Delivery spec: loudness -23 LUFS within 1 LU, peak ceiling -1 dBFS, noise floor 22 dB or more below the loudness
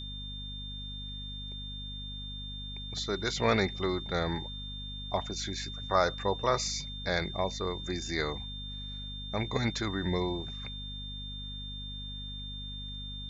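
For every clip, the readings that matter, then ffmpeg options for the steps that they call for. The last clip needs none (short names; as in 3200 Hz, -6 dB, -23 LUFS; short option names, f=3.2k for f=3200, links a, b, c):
hum 50 Hz; harmonics up to 250 Hz; hum level -40 dBFS; steady tone 3600 Hz; tone level -41 dBFS; loudness -34.0 LUFS; peak -11.5 dBFS; loudness target -23.0 LUFS
-> -af "bandreject=f=50:t=h:w=4,bandreject=f=100:t=h:w=4,bandreject=f=150:t=h:w=4,bandreject=f=200:t=h:w=4,bandreject=f=250:t=h:w=4"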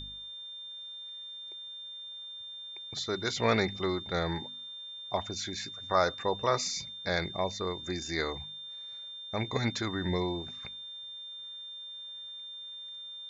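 hum none; steady tone 3600 Hz; tone level -41 dBFS
-> -af "bandreject=f=3.6k:w=30"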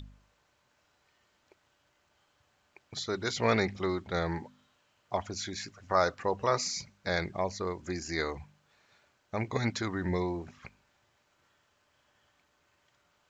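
steady tone none; loudness -32.5 LUFS; peak -11.5 dBFS; loudness target -23.0 LUFS
-> -af "volume=9.5dB"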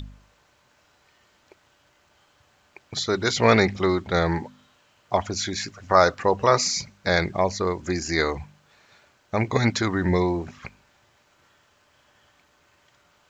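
loudness -23.0 LUFS; peak -2.0 dBFS; noise floor -63 dBFS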